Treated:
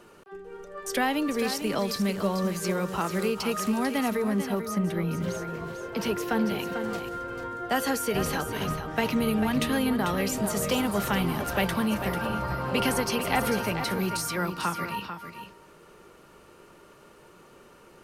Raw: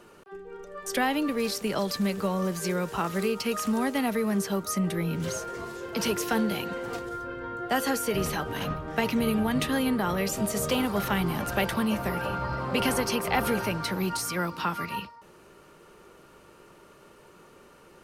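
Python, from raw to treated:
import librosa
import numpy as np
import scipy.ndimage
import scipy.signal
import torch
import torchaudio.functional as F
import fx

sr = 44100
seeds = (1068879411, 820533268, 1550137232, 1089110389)

y = fx.peak_eq(x, sr, hz=8100.0, db=-8.5, octaves=2.2, at=(4.17, 6.59))
y = y + 10.0 ** (-9.0 / 20.0) * np.pad(y, (int(444 * sr / 1000.0), 0))[:len(y)]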